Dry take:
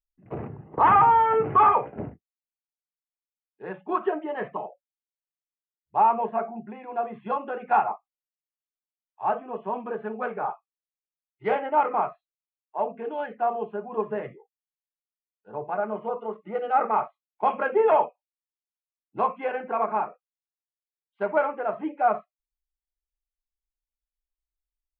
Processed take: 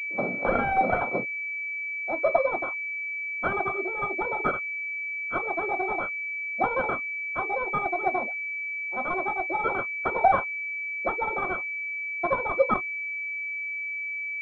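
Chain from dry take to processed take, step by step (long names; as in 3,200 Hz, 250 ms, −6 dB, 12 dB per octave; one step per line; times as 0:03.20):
running median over 41 samples
in parallel at −1.5 dB: downward compressor, threshold −36 dBFS, peak gain reduction 16.5 dB
on the sum: hollow resonant body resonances 320/760 Hz, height 9 dB, ringing for 25 ms
wrong playback speed 45 rpm record played at 78 rpm
switching amplifier with a slow clock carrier 2,300 Hz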